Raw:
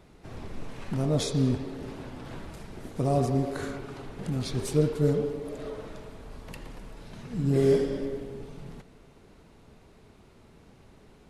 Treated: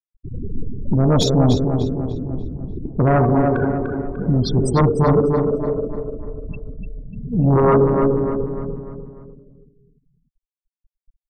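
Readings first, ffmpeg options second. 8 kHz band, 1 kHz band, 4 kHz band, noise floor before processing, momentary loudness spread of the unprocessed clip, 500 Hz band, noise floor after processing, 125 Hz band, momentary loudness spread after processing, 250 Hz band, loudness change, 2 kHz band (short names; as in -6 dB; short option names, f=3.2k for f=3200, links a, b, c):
+5.5 dB, +15.5 dB, +9.5 dB, -56 dBFS, 20 LU, +10.5 dB, under -85 dBFS, +11.5 dB, 18 LU, +11.0 dB, +10.5 dB, +10.0 dB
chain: -filter_complex "[0:a]afftfilt=real='re*gte(hypot(re,im),0.0355)':imag='im*gte(hypot(re,im),0.0355)':win_size=1024:overlap=0.75,aeval=exprs='0.266*sin(PI/2*2.82*val(0)/0.266)':c=same,asplit=2[a][b];[b]adelay=297,lowpass=f=3.7k:p=1,volume=-6dB,asplit=2[c][d];[d]adelay=297,lowpass=f=3.7k:p=1,volume=0.45,asplit=2[e][f];[f]adelay=297,lowpass=f=3.7k:p=1,volume=0.45,asplit=2[g][h];[h]adelay=297,lowpass=f=3.7k:p=1,volume=0.45,asplit=2[i][j];[j]adelay=297,lowpass=f=3.7k:p=1,volume=0.45[k];[a][c][e][g][i][k]amix=inputs=6:normalize=0,volume=1dB"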